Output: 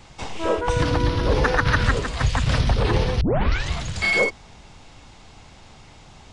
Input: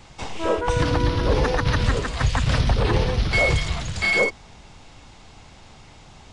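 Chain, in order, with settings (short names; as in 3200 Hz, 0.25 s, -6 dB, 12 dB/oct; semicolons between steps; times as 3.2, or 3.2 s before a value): 1.44–1.91 bell 1500 Hz +8.5 dB 0.75 oct; 3.21 tape start 0.51 s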